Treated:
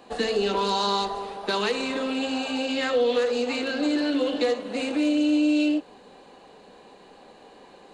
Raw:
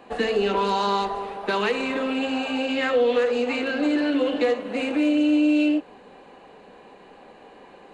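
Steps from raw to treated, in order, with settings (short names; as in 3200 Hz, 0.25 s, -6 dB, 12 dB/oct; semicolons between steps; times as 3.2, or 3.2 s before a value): resonant high shelf 3200 Hz +6.5 dB, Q 1.5; gain -2 dB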